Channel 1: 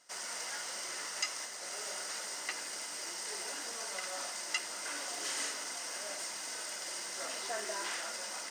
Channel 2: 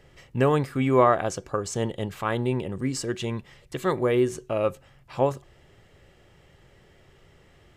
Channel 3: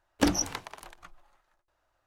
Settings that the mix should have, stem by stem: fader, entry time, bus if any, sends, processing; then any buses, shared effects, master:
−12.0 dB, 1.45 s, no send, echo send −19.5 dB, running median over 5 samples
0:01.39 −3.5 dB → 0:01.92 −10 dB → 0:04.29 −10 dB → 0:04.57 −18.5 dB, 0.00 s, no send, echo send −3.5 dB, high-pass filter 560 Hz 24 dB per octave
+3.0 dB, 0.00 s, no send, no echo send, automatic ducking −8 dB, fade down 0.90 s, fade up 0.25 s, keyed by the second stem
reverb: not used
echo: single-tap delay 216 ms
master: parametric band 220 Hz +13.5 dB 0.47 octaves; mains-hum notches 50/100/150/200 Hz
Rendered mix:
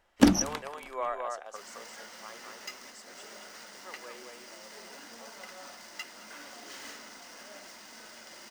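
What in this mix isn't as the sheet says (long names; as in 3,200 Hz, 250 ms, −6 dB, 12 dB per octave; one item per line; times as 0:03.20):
stem 1 −12.0 dB → −5.0 dB
stem 2 −3.5 dB → −13.0 dB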